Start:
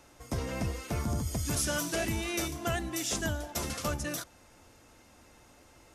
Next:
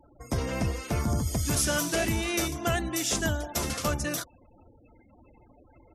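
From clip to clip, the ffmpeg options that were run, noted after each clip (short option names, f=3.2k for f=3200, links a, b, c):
-af "afftfilt=real='re*gte(hypot(re,im),0.00316)':imag='im*gte(hypot(re,im),0.00316)':win_size=1024:overlap=0.75,volume=4.5dB"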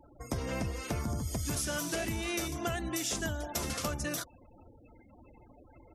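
-af "acompressor=threshold=-31dB:ratio=6"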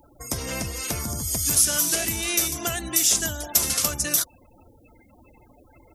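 -af "crystalizer=i=4.5:c=0,volume=2.5dB"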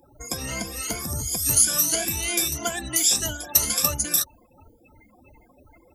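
-af "afftfilt=real='re*pow(10,17/40*sin(2*PI*(1.8*log(max(b,1)*sr/1024/100)/log(2)-(2.9)*(pts-256)/sr)))':imag='im*pow(10,17/40*sin(2*PI*(1.8*log(max(b,1)*sr/1024/100)/log(2)-(2.9)*(pts-256)/sr)))':win_size=1024:overlap=0.75,volume=-3.5dB"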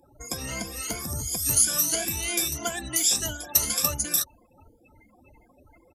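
-af "aresample=32000,aresample=44100,volume=-2.5dB"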